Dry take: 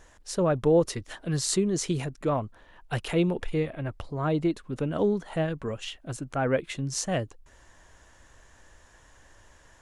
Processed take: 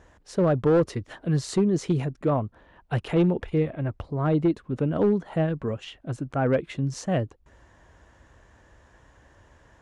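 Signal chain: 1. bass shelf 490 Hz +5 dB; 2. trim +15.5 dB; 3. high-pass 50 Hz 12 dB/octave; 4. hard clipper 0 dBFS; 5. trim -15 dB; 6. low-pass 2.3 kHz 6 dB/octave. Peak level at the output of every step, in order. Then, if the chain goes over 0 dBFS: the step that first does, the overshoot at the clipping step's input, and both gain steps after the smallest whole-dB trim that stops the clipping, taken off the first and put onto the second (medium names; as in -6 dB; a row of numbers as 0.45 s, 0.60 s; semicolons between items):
-9.5 dBFS, +6.0 dBFS, +6.0 dBFS, 0.0 dBFS, -15.0 dBFS, -15.0 dBFS; step 2, 6.0 dB; step 2 +9.5 dB, step 5 -9 dB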